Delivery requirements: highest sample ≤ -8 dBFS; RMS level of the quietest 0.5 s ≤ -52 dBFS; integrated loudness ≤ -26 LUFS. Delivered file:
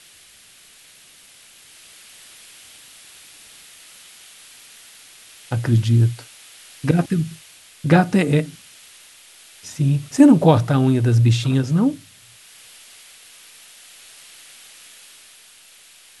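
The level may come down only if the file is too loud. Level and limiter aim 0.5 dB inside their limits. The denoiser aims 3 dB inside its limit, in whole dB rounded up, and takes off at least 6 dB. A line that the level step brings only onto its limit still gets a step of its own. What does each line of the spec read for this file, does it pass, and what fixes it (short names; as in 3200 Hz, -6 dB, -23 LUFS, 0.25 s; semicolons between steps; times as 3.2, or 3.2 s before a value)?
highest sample -1.5 dBFS: fail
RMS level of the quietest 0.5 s -49 dBFS: fail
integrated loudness -18.0 LUFS: fail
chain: gain -8.5 dB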